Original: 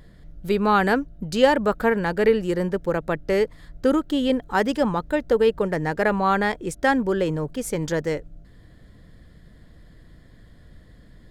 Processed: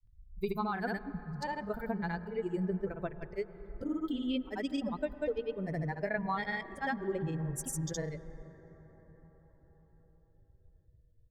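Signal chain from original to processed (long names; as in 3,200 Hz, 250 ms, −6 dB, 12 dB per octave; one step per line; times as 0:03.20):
spectral dynamics exaggerated over time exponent 2
downward compressor 6 to 1, threshold −30 dBFS, peak gain reduction 16.5 dB
granular cloud, pitch spread up and down by 0 semitones
convolution reverb RT60 5.9 s, pre-delay 93 ms, DRR 14 dB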